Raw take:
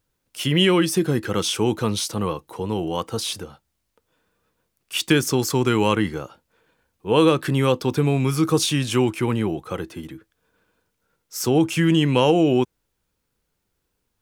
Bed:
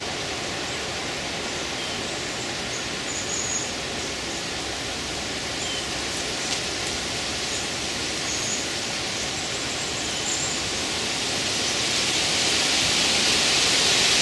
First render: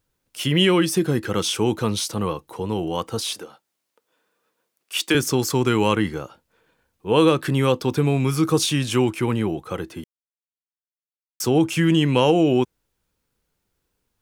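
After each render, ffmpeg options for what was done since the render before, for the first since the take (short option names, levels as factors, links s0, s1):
-filter_complex "[0:a]asettb=1/sr,asplit=3[s0][s1][s2];[s0]atrim=end=3.214[s3];[s1]atrim=start=3.21:end=5.15,asetpts=PTS-STARTPTS,afade=t=in:d=0.004:c=qsin,afade=t=out:st=1.936:d=0.004:c=qsin,highpass=310[s4];[s2]atrim=start=5.146[s5];[s3][s4]acrossfade=d=0.004:c1=hsin:c2=qsin[s6];[s6][s5]acrossfade=d=0.004:c1=qsin:c2=hsin,asplit=3[s7][s8][s9];[s7]atrim=end=10.04,asetpts=PTS-STARTPTS,afade=t=out:st=10.036:d=0.004:c=hsin[s10];[s8]atrim=start=10.04:end=11.4,asetpts=PTS-STARTPTS,volume=0[s11];[s9]atrim=start=11.4,asetpts=PTS-STARTPTS,afade=t=in:d=0.004:c=hsin[s12];[s10][s11][s12]concat=n=3:v=0:a=1"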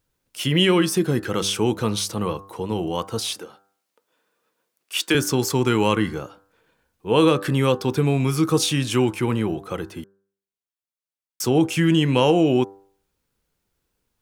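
-af "bandreject=f=98.05:t=h:w=4,bandreject=f=196.1:t=h:w=4,bandreject=f=294.15:t=h:w=4,bandreject=f=392.2:t=h:w=4,bandreject=f=490.25:t=h:w=4,bandreject=f=588.3:t=h:w=4,bandreject=f=686.35:t=h:w=4,bandreject=f=784.4:t=h:w=4,bandreject=f=882.45:t=h:w=4,bandreject=f=980.5:t=h:w=4,bandreject=f=1078.55:t=h:w=4,bandreject=f=1176.6:t=h:w=4,bandreject=f=1274.65:t=h:w=4,bandreject=f=1372.7:t=h:w=4,bandreject=f=1470.75:t=h:w=4,bandreject=f=1568.8:t=h:w=4,bandreject=f=1666.85:t=h:w=4,bandreject=f=1764.9:t=h:w=4"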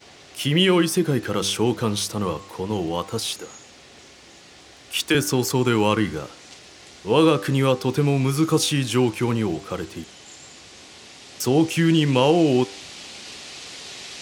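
-filter_complex "[1:a]volume=0.126[s0];[0:a][s0]amix=inputs=2:normalize=0"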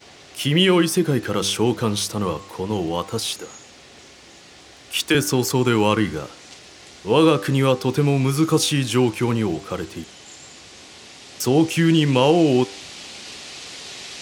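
-af "volume=1.19,alimiter=limit=0.708:level=0:latency=1"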